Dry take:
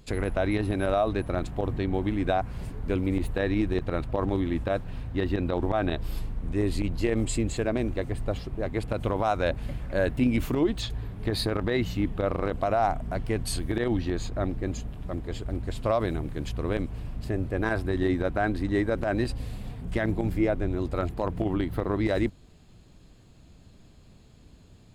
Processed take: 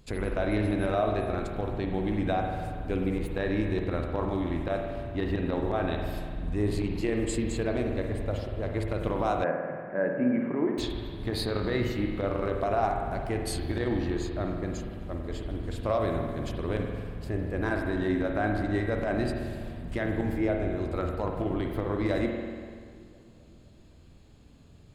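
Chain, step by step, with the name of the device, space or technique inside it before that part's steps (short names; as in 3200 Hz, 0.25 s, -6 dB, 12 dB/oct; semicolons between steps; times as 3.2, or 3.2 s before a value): dub delay into a spring reverb (darkening echo 0.258 s, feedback 68%, low-pass 1500 Hz, level -18.5 dB; spring tank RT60 1.8 s, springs 48 ms, chirp 35 ms, DRR 2 dB); 9.44–10.78 elliptic band-pass 160–1900 Hz, stop band 40 dB; gain -3.5 dB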